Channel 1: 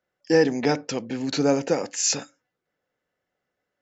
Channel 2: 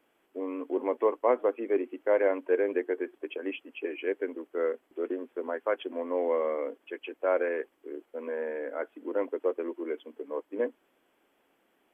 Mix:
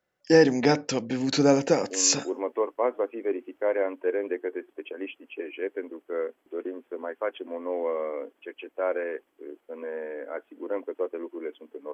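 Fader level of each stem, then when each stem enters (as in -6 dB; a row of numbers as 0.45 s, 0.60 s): +1.0 dB, -1.0 dB; 0.00 s, 1.55 s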